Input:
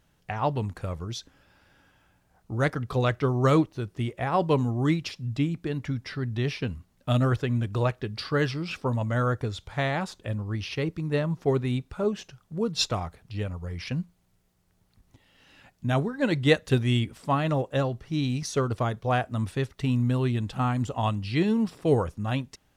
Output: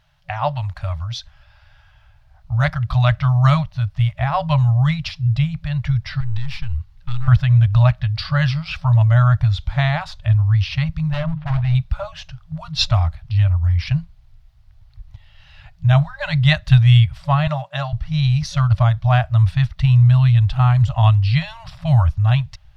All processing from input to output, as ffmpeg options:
ffmpeg -i in.wav -filter_complex "[0:a]asettb=1/sr,asplit=3[link_01][link_02][link_03];[link_01]atrim=end=6.204[link_04];[link_02]atrim=start=6.2:end=7.28,asetpts=PTS-STARTPTS,afade=type=in:duration=0.004:curve=qsin,afade=type=out:start_time=1.076:duration=0.004:curve=qsin,acompressor=threshold=-31dB:ratio=5:attack=3.2:release=140:knee=1:detection=peak,aeval=exprs='clip(val(0),-1,0.00841)':channel_layout=same,asuperstop=centerf=660:order=12:qfactor=3[link_05];[link_03]atrim=start=7.276[link_06];[link_04][link_05]acrossfade=duration=0.004:curve1=hsin:curve2=qsin[link_07];[link_07][link_06]acrossfade=duration=0.004:curve1=qsin:curve2=hsin,asettb=1/sr,asplit=3[link_08][link_09][link_10];[link_08]atrim=end=11.124[link_11];[link_09]atrim=start=11.12:end=11.75,asetpts=PTS-STARTPTS,afade=type=in:duration=0.004:curve=qsin,afade=type=out:start_time=0.626:duration=0.004:curve=qsin,lowpass=frequency=3200:width=0.5412,lowpass=frequency=3200:width=1.3066,bandreject=frequency=50:width_type=h:width=6,bandreject=frequency=100:width_type=h:width=6,bandreject=frequency=150:width_type=h:width=6,bandreject=frequency=200:width_type=h:width=6,bandreject=frequency=250:width_type=h:width=6,bandreject=frequency=300:width_type=h:width=6,bandreject=frequency=350:width_type=h:width=6,bandreject=frequency=400:width_type=h:width=6,volume=26dB,asoftclip=hard,volume=-26dB[link_12];[link_10]atrim=start=11.746[link_13];[link_11][link_12]acrossfade=duration=0.004:curve1=hsin:curve2=qsin[link_14];[link_14][link_13]acrossfade=duration=0.004:curve1=qsin:curve2=hsin,asettb=1/sr,asplit=3[link_15][link_16][link_17];[link_15]atrim=end=17.474[link_18];[link_16]atrim=start=17.47:end=17.93,asetpts=PTS-STARTPTS,afade=type=in:duration=0.004:curve=qsin,afade=type=out:start_time=0.456:duration=0.004:curve=qsin,agate=range=-33dB:threshold=-46dB:ratio=3:release=100:detection=peak,highpass=frequency=180:width=0.5412,highpass=frequency=180:width=1.3066[link_19];[link_17]atrim=start=17.926[link_20];[link_18][link_19]acrossfade=duration=0.004:curve1=hsin:curve2=qsin[link_21];[link_21][link_20]acrossfade=duration=0.004:curve1=qsin:curve2=hsin,asubboost=boost=11:cutoff=82,afftfilt=real='re*(1-between(b*sr/4096,170,560))':imag='im*(1-between(b*sr/4096,170,560))':win_size=4096:overlap=0.75,highshelf=frequency=5900:width_type=q:width=1.5:gain=-9.5,volume=6dB" out.wav

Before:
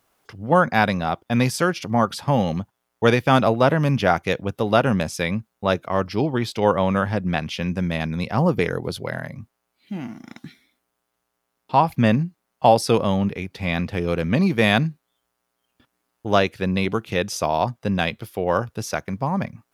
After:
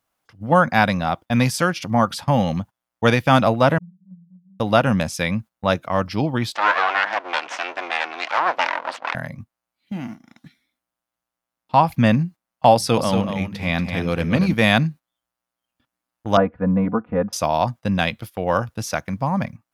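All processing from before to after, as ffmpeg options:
ffmpeg -i in.wav -filter_complex "[0:a]asettb=1/sr,asplit=3[link_01][link_02][link_03];[link_01]atrim=end=3.784[link_04];[link_02]atrim=start=3.78:end=4.6,asetpts=PTS-STARTPTS,afade=type=in:duration=0.004:curve=qsin,afade=type=out:start_time=0.816:duration=0.004:curve=qsin,asuperpass=centerf=180:order=12:qfactor=6.9,acompressor=threshold=-41dB:ratio=2:attack=3.2:release=140:knee=1:detection=peak[link_05];[link_03]atrim=start=4.596[link_06];[link_04][link_05]acrossfade=duration=0.004:curve1=hsin:curve2=qsin[link_07];[link_07][link_06]acrossfade=duration=0.004:curve1=qsin:curve2=hsin,asettb=1/sr,asplit=3[link_08][link_09][link_10];[link_08]atrim=end=6.554[link_11];[link_09]atrim=start=6.55:end=9.15,asetpts=PTS-STARTPTS,afade=type=in:duration=0.004:curve=qsin,afade=type=out:start_time=2.596:duration=0.004:curve=qsin,aeval=exprs='abs(val(0))':channel_layout=same,asplit=2[link_12][link_13];[link_13]highpass=frequency=720:poles=1,volume=17dB,asoftclip=type=tanh:threshold=-4.5dB[link_14];[link_12][link_14]amix=inputs=2:normalize=0,lowpass=frequency=1900:poles=1,volume=-6dB,highpass=670,lowpass=5500[link_15];[link_10]atrim=start=9.146[link_16];[link_11][link_15]acrossfade=duration=0.004:curve1=hsin:curve2=qsin[link_17];[link_17][link_16]acrossfade=duration=0.004:curve1=qsin:curve2=hsin,asettb=1/sr,asplit=3[link_18][link_19][link_20];[link_18]atrim=end=12.744[link_21];[link_19]atrim=start=12.74:end=14.54,asetpts=PTS-STARTPTS,afade=type=in:duration=0.004:curve=qsin,afade=type=out:start_time=1.796:duration=0.004:curve=qsin,bandreject=frequency=50:width_type=h:width=6,bandreject=frequency=100:width_type=h:width=6,bandreject=frequency=150:width_type=h:width=6,bandreject=frequency=200:width_type=h:width=6,aecho=1:1:234:0.447,atrim=end_sample=79380[link_22];[link_20]atrim=start=14.536[link_23];[link_21][link_22]acrossfade=duration=0.004:curve1=hsin:curve2=qsin[link_24];[link_24][link_23]acrossfade=duration=0.004:curve1=qsin:curve2=hsin,asettb=1/sr,asplit=3[link_25][link_26][link_27];[link_25]atrim=end=16.374[link_28];[link_26]atrim=start=16.37:end=17.33,asetpts=PTS-STARTPTS,afade=type=in:duration=0.004:curve=qsin,afade=type=out:start_time=0.956:duration=0.004:curve=qsin,lowpass=frequency=1300:width=0.5412,lowpass=frequency=1300:width=1.3066,aecho=1:1:4.1:0.82,atrim=end_sample=42336[link_29];[link_27]atrim=start=17.326[link_30];[link_28][link_29]acrossfade=duration=0.004:curve1=hsin:curve2=qsin[link_31];[link_31][link_30]acrossfade=duration=0.004:curve1=qsin:curve2=hsin,agate=range=-11dB:threshold=-35dB:ratio=16:detection=peak,equalizer=frequency=400:width_type=o:width=0.31:gain=-11,volume=2dB" out.wav

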